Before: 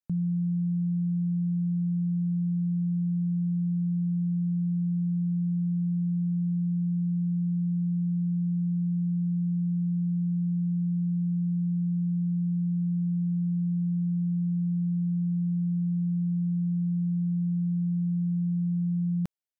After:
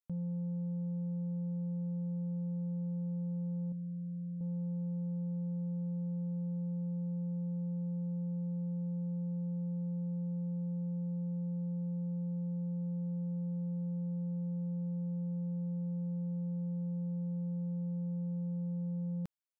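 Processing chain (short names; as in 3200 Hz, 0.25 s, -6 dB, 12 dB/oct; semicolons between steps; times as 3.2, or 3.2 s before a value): 3.72–4.41 low shelf 270 Hz -7.5 dB; soft clip -26.5 dBFS, distortion -19 dB; gain -6.5 dB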